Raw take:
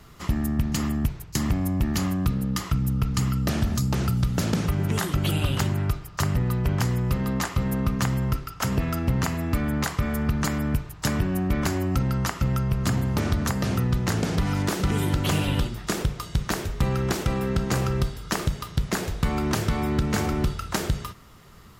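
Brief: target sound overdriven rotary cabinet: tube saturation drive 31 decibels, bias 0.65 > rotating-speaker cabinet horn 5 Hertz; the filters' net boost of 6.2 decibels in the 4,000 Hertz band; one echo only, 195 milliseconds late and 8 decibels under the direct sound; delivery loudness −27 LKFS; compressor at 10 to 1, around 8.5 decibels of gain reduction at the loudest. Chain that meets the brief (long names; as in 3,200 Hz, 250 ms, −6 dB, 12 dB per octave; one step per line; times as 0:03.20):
parametric band 4,000 Hz +8 dB
downward compressor 10 to 1, threshold −27 dBFS
single-tap delay 195 ms −8 dB
tube saturation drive 31 dB, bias 0.65
rotating-speaker cabinet horn 5 Hz
level +11.5 dB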